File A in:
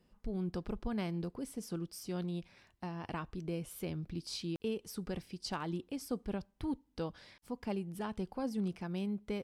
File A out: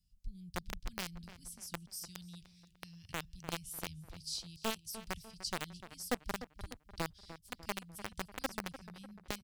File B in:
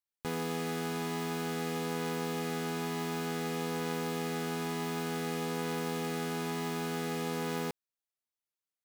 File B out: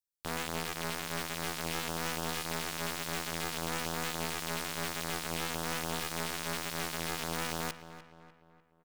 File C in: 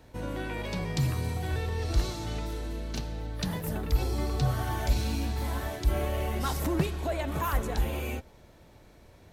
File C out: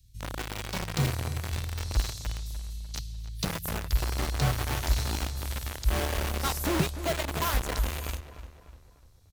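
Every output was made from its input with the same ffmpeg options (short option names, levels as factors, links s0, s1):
-filter_complex "[0:a]acrossover=split=130|3700[s0][s1][s2];[s1]acrusher=bits=4:mix=0:aa=0.000001[s3];[s2]dynaudnorm=f=290:g=9:m=1.68[s4];[s0][s3][s4]amix=inputs=3:normalize=0,asplit=2[s5][s6];[s6]adelay=298,lowpass=f=2700:p=1,volume=0.237,asplit=2[s7][s8];[s8]adelay=298,lowpass=f=2700:p=1,volume=0.49,asplit=2[s9][s10];[s10]adelay=298,lowpass=f=2700:p=1,volume=0.49,asplit=2[s11][s12];[s12]adelay=298,lowpass=f=2700:p=1,volume=0.49,asplit=2[s13][s14];[s14]adelay=298,lowpass=f=2700:p=1,volume=0.49[s15];[s5][s7][s9][s11][s13][s15]amix=inputs=6:normalize=0"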